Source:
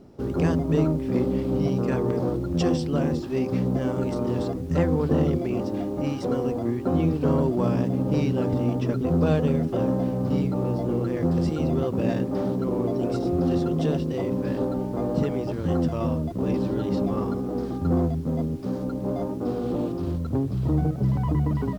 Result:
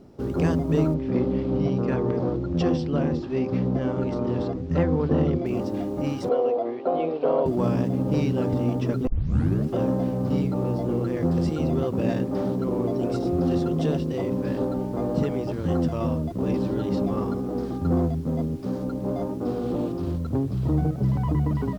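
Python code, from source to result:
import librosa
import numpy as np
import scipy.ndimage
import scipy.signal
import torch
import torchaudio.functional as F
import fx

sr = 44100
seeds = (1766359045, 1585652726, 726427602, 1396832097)

y = fx.bessel_lowpass(x, sr, hz=4100.0, order=4, at=(0.94, 5.46))
y = fx.cabinet(y, sr, low_hz=430.0, low_slope=12, high_hz=4000.0, hz=(480.0, 680.0, 1700.0), db=(8, 10, -5), at=(6.29, 7.46))
y = fx.edit(y, sr, fx.tape_start(start_s=9.07, length_s=0.63), tone=tone)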